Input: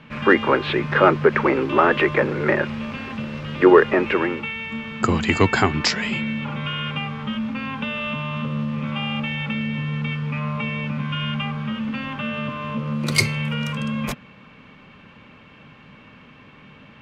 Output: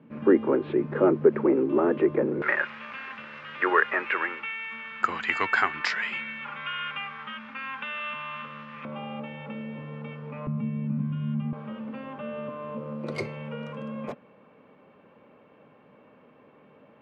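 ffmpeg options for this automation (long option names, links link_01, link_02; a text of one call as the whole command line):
ffmpeg -i in.wav -af "asetnsamples=nb_out_samples=441:pad=0,asendcmd='2.42 bandpass f 1600;8.85 bandpass f 530;10.47 bandpass f 200;11.53 bandpass f 520',bandpass=frequency=320:width_type=q:width=1.6:csg=0" out.wav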